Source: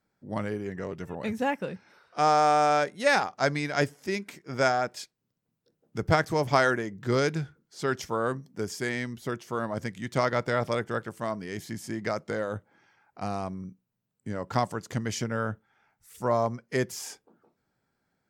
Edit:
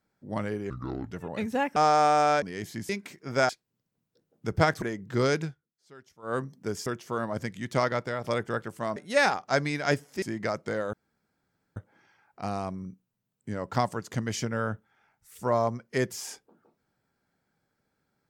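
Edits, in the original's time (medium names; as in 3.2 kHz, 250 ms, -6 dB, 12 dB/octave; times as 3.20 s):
0.70–0.98 s: speed 68%
1.63–2.20 s: delete
2.86–4.12 s: swap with 11.37–11.84 s
4.72–5.00 s: delete
6.33–6.75 s: delete
7.34–8.29 s: dip -22.5 dB, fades 0.14 s
8.79–9.27 s: delete
10.23–10.65 s: fade out, to -8.5 dB
12.55 s: insert room tone 0.83 s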